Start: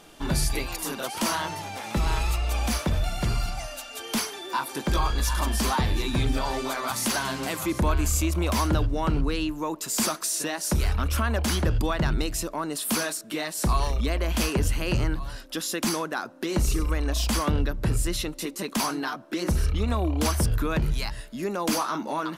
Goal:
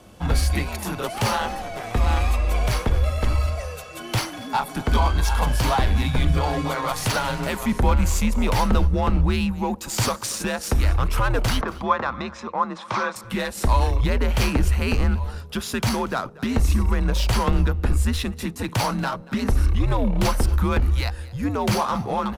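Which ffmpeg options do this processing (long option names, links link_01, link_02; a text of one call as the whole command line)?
ffmpeg -i in.wav -filter_complex "[0:a]asplit=2[link_01][link_02];[link_02]adynamicsmooth=sensitivity=6.5:basefreq=1300,volume=2dB[link_03];[link_01][link_03]amix=inputs=2:normalize=0,afreqshift=-110,asettb=1/sr,asplit=3[link_04][link_05][link_06];[link_04]atrim=end=11.614[link_07];[link_05]atrim=start=11.61:end=13.16,asetpts=PTS-STARTPTS,afade=type=in:duration=0.004:curve=qsin,afade=type=out:start_time=1.546:duration=0.004:curve=qsin,highpass=240,equalizer=frequency=270:width_type=q:width=4:gain=-7,equalizer=frequency=430:width_type=q:width=4:gain=-5,equalizer=frequency=1100:width_type=q:width=4:gain=10,equalizer=frequency=2900:width_type=q:width=4:gain=-9,equalizer=frequency=4500:width_type=q:width=4:gain=-9,lowpass=frequency=4900:width=0.5412,lowpass=frequency=4900:width=1.3066[link_08];[link_06]atrim=start=13.156[link_09];[link_07][link_08]acrossfade=duration=0.004:curve1=hsin:curve2=qsin[link_10];[link_10][link_09]acrossfade=duration=0.004:curve1=qsin:curve2=hsin,aecho=1:1:236:0.0891,volume=-2dB" out.wav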